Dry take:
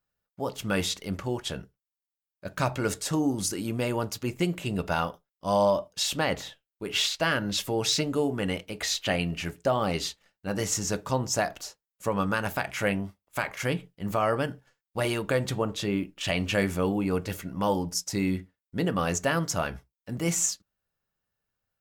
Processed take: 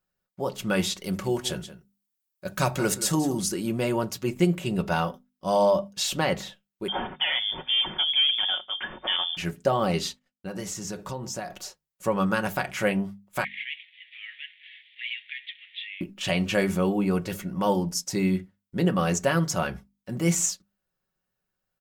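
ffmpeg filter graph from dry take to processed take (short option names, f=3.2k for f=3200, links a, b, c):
-filter_complex "[0:a]asettb=1/sr,asplit=3[a][b][c];[a]atrim=end=1.044[d];[b]atrim=start=1.04:end=3.38,asetpts=PTS-STARTPTS,afade=t=in:d=0.004:c=qsin,afade=t=out:st=2.336:d=0.004:c=qsin,highshelf=f=5.2k:g=9.5,aecho=1:1:178:0.2,atrim=end_sample=103194[e];[c]atrim=start=3.376[f];[d][e]acrossfade=d=0.004:c1=hsin:c2=qsin[g];[g][f]acrossfade=d=0.004:c1=qsin:c2=hsin,asettb=1/sr,asplit=3[h][i][j];[h]atrim=end=6.884[k];[i]atrim=start=6.88:end=9.37,asetpts=PTS-STARTPTS,afade=t=in:d=0.004:c=qsin,afade=t=out:st=2.486:d=0.004:c=qsin,equalizer=f=390:w=5.6:g=14.5,asoftclip=type=hard:threshold=-21.5dB,lowpass=f=3.1k:t=q:w=0.5098,lowpass=f=3.1k:t=q:w=0.6013,lowpass=f=3.1k:t=q:w=0.9,lowpass=f=3.1k:t=q:w=2.563,afreqshift=-3600[l];[j]atrim=start=9.366[m];[k][l]acrossfade=d=0.004:c1=hsin:c2=qsin[n];[n][m]acrossfade=d=0.004:c1=qsin:c2=hsin,asettb=1/sr,asplit=3[o][p][q];[o]atrim=end=10.094[r];[p]atrim=start=10.09:end=11.65,asetpts=PTS-STARTPTS,afade=t=in:d=0.004:c=qsin,afade=t=out:st=1.556:d=0.004:c=qsin,agate=range=-33dB:threshold=-55dB:ratio=3:release=100:detection=peak,acompressor=threshold=-32dB:ratio=5:attack=3.2:release=140:knee=1:detection=peak[s];[q]atrim=start=11.646[t];[r][s]acrossfade=d=0.004:c1=hsin:c2=qsin[u];[u][t]acrossfade=d=0.004:c1=qsin:c2=hsin,asettb=1/sr,asplit=3[v][w][x];[v]atrim=end=13.444[y];[w]atrim=start=13.44:end=16.01,asetpts=PTS-STARTPTS,afade=t=in:d=0.004:c=qsin,afade=t=out:st=2.566:d=0.004:c=qsin,aeval=exprs='val(0)+0.5*0.0178*sgn(val(0))':c=same,asuperpass=centerf=2600:order=12:qfactor=1.5[z];[x]atrim=start=16.006[aa];[y][z]acrossfade=d=0.004:c1=hsin:c2=qsin[ab];[ab][aa]acrossfade=d=0.004:c1=qsin:c2=hsin,equalizer=f=220:t=o:w=2.8:g=3,bandreject=f=50:t=h:w=6,bandreject=f=100:t=h:w=6,bandreject=f=150:t=h:w=6,bandreject=f=200:t=h:w=6,bandreject=f=250:t=h:w=6,aecho=1:1:5.4:0.46"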